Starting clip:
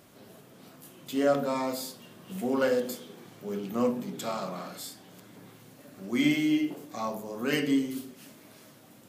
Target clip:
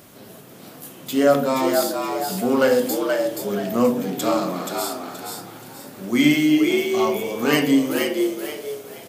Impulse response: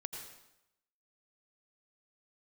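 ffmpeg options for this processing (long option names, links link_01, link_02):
-filter_complex "[0:a]highshelf=frequency=10000:gain=6.5,asplit=5[link_01][link_02][link_03][link_04][link_05];[link_02]adelay=477,afreqshift=76,volume=-4.5dB[link_06];[link_03]adelay=954,afreqshift=152,volume=-14.1dB[link_07];[link_04]adelay=1431,afreqshift=228,volume=-23.8dB[link_08];[link_05]adelay=1908,afreqshift=304,volume=-33.4dB[link_09];[link_01][link_06][link_07][link_08][link_09]amix=inputs=5:normalize=0,volume=8.5dB"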